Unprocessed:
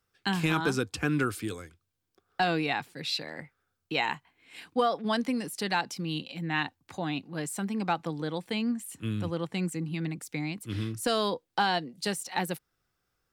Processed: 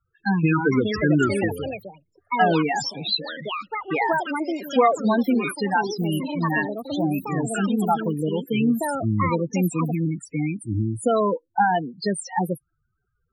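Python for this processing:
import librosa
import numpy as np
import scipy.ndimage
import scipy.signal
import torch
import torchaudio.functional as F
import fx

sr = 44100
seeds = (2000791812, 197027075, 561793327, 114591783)

y = fx.spec_topn(x, sr, count=8)
y = fx.echo_pitch(y, sr, ms=524, semitones=5, count=2, db_per_echo=-6.0)
y = fx.bass_treble(y, sr, bass_db=0, treble_db=3)
y = y * 10.0 ** (9.0 / 20.0)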